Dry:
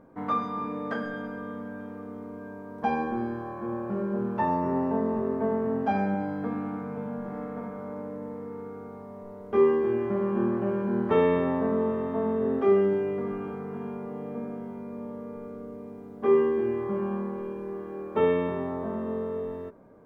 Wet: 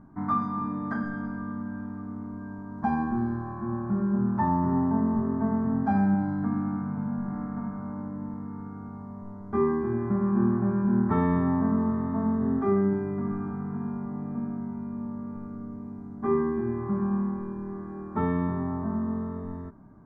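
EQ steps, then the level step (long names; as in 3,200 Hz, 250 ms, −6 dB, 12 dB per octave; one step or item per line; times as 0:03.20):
high-frequency loss of the air 71 metres
low-shelf EQ 410 Hz +10 dB
phaser with its sweep stopped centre 1,200 Hz, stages 4
0.0 dB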